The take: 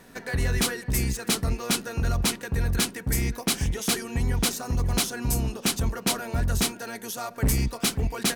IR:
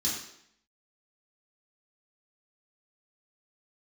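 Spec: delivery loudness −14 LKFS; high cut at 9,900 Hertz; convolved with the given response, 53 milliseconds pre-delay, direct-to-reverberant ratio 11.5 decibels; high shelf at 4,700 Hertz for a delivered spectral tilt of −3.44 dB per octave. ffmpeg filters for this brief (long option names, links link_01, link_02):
-filter_complex "[0:a]lowpass=9900,highshelf=frequency=4700:gain=8.5,asplit=2[link_01][link_02];[1:a]atrim=start_sample=2205,adelay=53[link_03];[link_02][link_03]afir=irnorm=-1:irlink=0,volume=-17dB[link_04];[link_01][link_04]amix=inputs=2:normalize=0,volume=9.5dB"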